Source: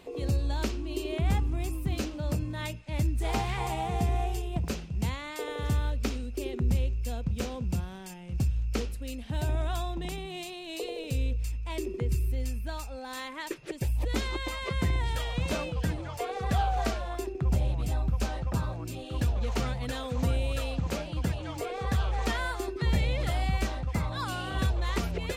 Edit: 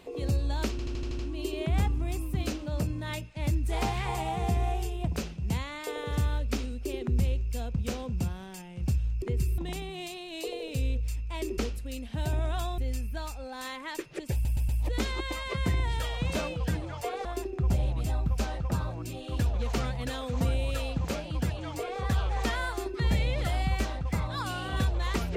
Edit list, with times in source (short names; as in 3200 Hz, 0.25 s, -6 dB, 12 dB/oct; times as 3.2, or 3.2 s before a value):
0.71 stutter 0.08 s, 7 plays
8.74–9.94 swap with 11.94–12.3
13.85 stutter 0.12 s, 4 plays
16.41–17.07 cut